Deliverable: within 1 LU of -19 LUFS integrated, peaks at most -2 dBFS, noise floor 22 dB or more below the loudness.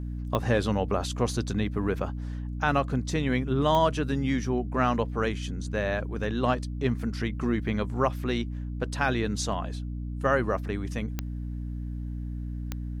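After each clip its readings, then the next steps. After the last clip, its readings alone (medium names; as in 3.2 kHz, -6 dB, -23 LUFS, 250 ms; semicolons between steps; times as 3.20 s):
clicks found 4; hum 60 Hz; highest harmonic 300 Hz; hum level -31 dBFS; loudness -29.0 LUFS; peak level -10.5 dBFS; loudness target -19.0 LUFS
-> de-click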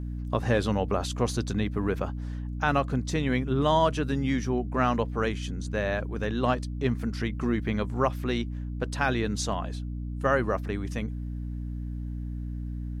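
clicks found 0; hum 60 Hz; highest harmonic 300 Hz; hum level -31 dBFS
-> de-hum 60 Hz, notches 5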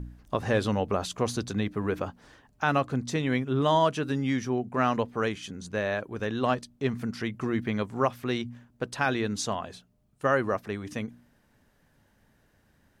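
hum not found; loudness -29.0 LUFS; peak level -10.5 dBFS; loudness target -19.0 LUFS
-> trim +10 dB; peak limiter -2 dBFS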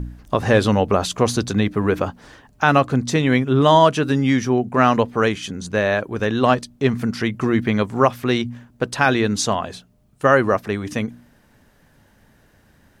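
loudness -19.0 LUFS; peak level -2.0 dBFS; noise floor -56 dBFS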